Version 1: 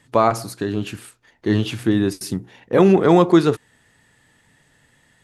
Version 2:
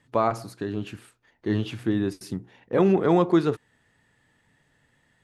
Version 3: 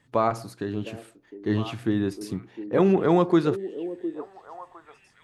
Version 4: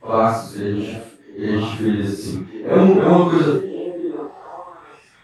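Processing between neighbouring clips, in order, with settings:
treble shelf 4.7 kHz -8.5 dB; trim -6.5 dB
repeats whose band climbs or falls 708 ms, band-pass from 360 Hz, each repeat 1.4 oct, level -10.5 dB
phase randomisation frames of 200 ms; trim +7.5 dB

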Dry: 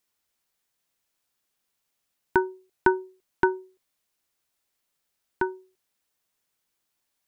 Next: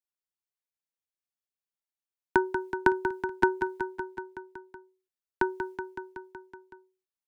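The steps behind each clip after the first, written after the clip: expander -53 dBFS; on a send: feedback delay 187 ms, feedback 60%, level -9 dB; on the sum: three bands compressed up and down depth 40%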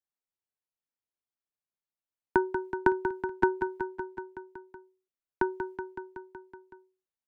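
treble shelf 2.3 kHz -11.5 dB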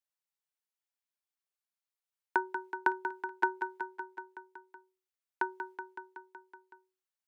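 high-pass 720 Hz 12 dB/octave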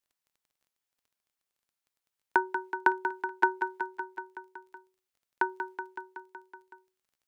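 crackle 15 per s -60 dBFS; trim +4.5 dB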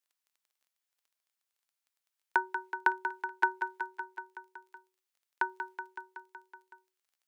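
high-pass 960 Hz 6 dB/octave

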